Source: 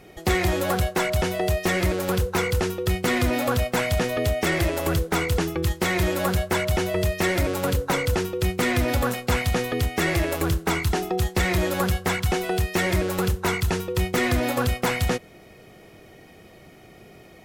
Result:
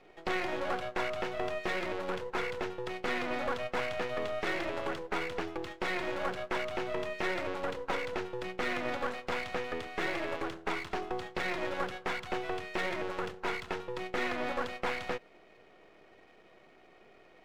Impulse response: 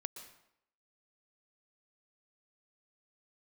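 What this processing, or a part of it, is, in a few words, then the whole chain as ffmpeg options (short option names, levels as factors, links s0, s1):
crystal radio: -af "highpass=360,lowpass=2800,aeval=exprs='if(lt(val(0),0),0.251*val(0),val(0))':c=same,volume=0.596"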